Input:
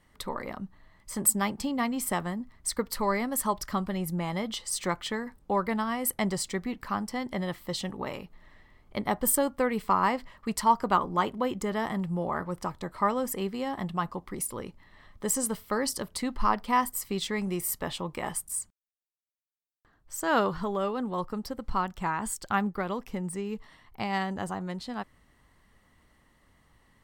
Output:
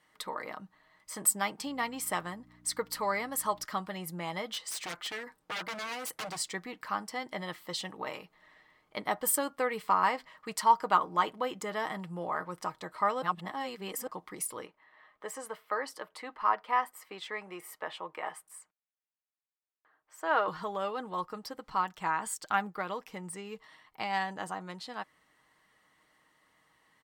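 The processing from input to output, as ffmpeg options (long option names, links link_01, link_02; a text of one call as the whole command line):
ffmpeg -i in.wav -filter_complex "[0:a]asettb=1/sr,asplit=3[link_01][link_02][link_03];[link_01]atrim=end=1.654[link_04];[link_02]atrim=start=1.65:end=3.65,asetpts=PTS-STARTPTS,afade=type=in:duration=0.004:curve=qsin,afade=type=out:start_time=1.996:duration=0.004:curve=qsin,aeval=exprs='val(0)+0.00708*(sin(2*PI*60*n/s)+sin(2*PI*2*60*n/s)/2+sin(2*PI*3*60*n/s)/3+sin(2*PI*4*60*n/s)/4+sin(2*PI*5*60*n/s)/5)':channel_layout=same[link_05];[link_03]atrim=start=3.646[link_06];[link_04][link_05]acrossfade=duration=0.004:curve1=hsin:curve2=qsin[link_07];[link_07][link_06]acrossfade=duration=0.004:curve1=qsin:curve2=hsin,asplit=3[link_08][link_09][link_10];[link_08]afade=type=out:start_time=4.46:duration=0.02[link_11];[link_09]aeval=exprs='0.0335*(abs(mod(val(0)/0.0335+3,4)-2)-1)':channel_layout=same,afade=type=in:start_time=4.46:duration=0.02,afade=type=out:start_time=6.38:duration=0.02[link_12];[link_10]afade=type=in:start_time=6.38:duration=0.02[link_13];[link_11][link_12][link_13]amix=inputs=3:normalize=0,asettb=1/sr,asplit=3[link_14][link_15][link_16];[link_14]atrim=end=14.664[link_17];[link_15]atrim=start=14.66:end=20.48,asetpts=PTS-STARTPTS,afade=type=in:duration=0.004:curve=qsin,afade=type=out:start_time=5.816:duration=0.004:curve=qsin,acrossover=split=350 2700:gain=0.2 1 0.178[link_18][link_19][link_20];[link_18][link_19][link_20]amix=inputs=3:normalize=0[link_21];[link_16]atrim=start=20.476[link_22];[link_17][link_21]acrossfade=duration=0.004:curve1=hsin:curve2=qsin[link_23];[link_23][link_22]acrossfade=duration=0.004:curve1=qsin:curve2=hsin,asplit=3[link_24][link_25][link_26];[link_24]atrim=end=13.222[link_27];[link_25]atrim=start=13.218:end=14.072,asetpts=PTS-STARTPTS,areverse[link_28];[link_26]atrim=start=14.068[link_29];[link_27][link_28]acrossfade=duration=0.004:curve1=hsin:curve2=hsin[link_30];[link_30][link_29]acrossfade=duration=0.004:curve1=hsin:curve2=hsin,highpass=frequency=710:poles=1,highshelf=frequency=6300:gain=-4.5,aecho=1:1:6.4:0.38" out.wav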